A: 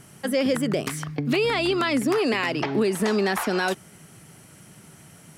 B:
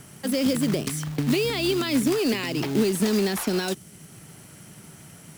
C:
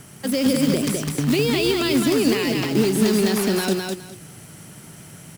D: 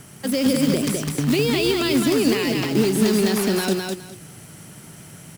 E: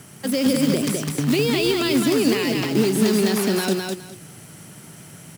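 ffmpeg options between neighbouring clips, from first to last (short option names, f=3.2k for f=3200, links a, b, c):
-filter_complex "[0:a]acrossover=split=410|3000[a][b][c];[b]acompressor=threshold=-59dB:ratio=1.5[d];[a][d][c]amix=inputs=3:normalize=0,acrusher=bits=3:mode=log:mix=0:aa=0.000001,volume=2.5dB"
-af "aecho=1:1:206|412|618:0.668|0.134|0.0267,volume=2.5dB"
-af anull
-af "highpass=87"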